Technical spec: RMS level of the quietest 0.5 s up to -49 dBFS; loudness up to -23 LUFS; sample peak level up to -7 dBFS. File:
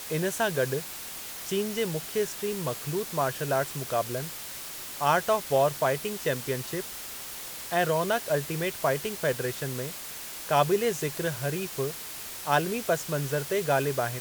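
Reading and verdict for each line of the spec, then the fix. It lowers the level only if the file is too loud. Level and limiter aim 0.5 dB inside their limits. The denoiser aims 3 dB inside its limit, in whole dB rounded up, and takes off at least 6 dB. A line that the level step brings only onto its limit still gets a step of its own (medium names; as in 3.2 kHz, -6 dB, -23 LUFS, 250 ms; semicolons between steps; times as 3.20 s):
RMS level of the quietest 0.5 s -39 dBFS: fail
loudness -29.0 LUFS: pass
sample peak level -10.0 dBFS: pass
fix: noise reduction 13 dB, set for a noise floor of -39 dBFS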